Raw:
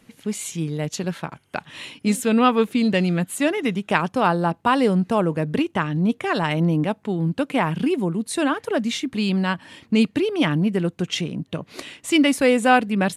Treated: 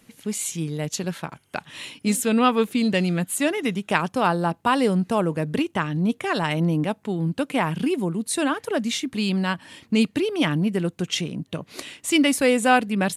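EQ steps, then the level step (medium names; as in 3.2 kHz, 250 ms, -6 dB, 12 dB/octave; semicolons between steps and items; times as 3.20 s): treble shelf 5.3 kHz +7.5 dB; -2.0 dB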